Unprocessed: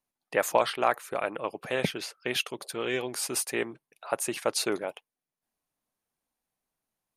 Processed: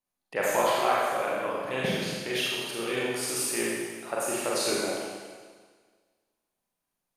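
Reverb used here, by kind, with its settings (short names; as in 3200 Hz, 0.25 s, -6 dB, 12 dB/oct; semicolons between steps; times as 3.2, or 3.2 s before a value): Schroeder reverb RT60 1.6 s, combs from 31 ms, DRR -6 dB; gain -5 dB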